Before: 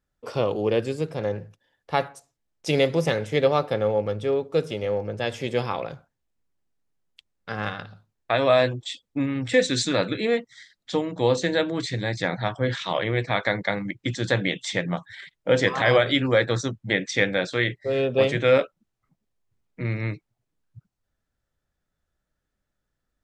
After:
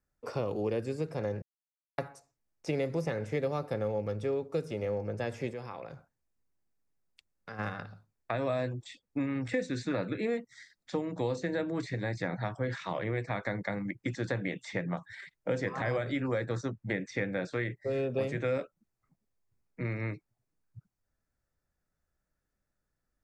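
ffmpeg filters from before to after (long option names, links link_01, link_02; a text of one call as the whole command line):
ffmpeg -i in.wav -filter_complex "[0:a]asplit=3[link_01][link_02][link_03];[link_01]afade=type=out:start_time=5.5:duration=0.02[link_04];[link_02]acompressor=threshold=-38dB:ratio=2.5:attack=3.2:release=140:knee=1:detection=peak,afade=type=in:start_time=5.5:duration=0.02,afade=type=out:start_time=7.58:duration=0.02[link_05];[link_03]afade=type=in:start_time=7.58:duration=0.02[link_06];[link_04][link_05][link_06]amix=inputs=3:normalize=0,asplit=3[link_07][link_08][link_09];[link_07]atrim=end=1.42,asetpts=PTS-STARTPTS,afade=type=out:start_time=1.416:duration=0.004:curve=hsin[link_10];[link_08]atrim=start=1.42:end=1.98,asetpts=PTS-STARTPTS,volume=0[link_11];[link_09]atrim=start=1.98,asetpts=PTS-STARTPTS,afade=type=in:duration=0.004:curve=hsin[link_12];[link_10][link_11][link_12]concat=n=3:v=0:a=1,equalizer=frequency=3200:width=4.2:gain=-11,bandreject=frequency=4000:width=20,acrossover=split=330|2600|5900[link_13][link_14][link_15][link_16];[link_13]acompressor=threshold=-30dB:ratio=4[link_17];[link_14]acompressor=threshold=-30dB:ratio=4[link_18];[link_15]acompressor=threshold=-51dB:ratio=4[link_19];[link_16]acompressor=threshold=-59dB:ratio=4[link_20];[link_17][link_18][link_19][link_20]amix=inputs=4:normalize=0,volume=-3.5dB" out.wav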